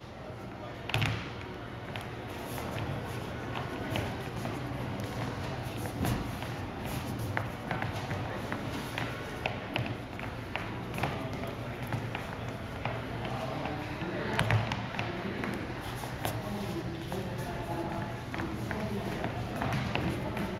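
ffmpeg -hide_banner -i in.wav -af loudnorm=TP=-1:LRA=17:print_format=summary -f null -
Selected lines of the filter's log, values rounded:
Input Integrated:    -35.5 LUFS
Input True Peak:     -10.7 dBTP
Input LRA:             2.8 LU
Input Threshold:     -45.5 LUFS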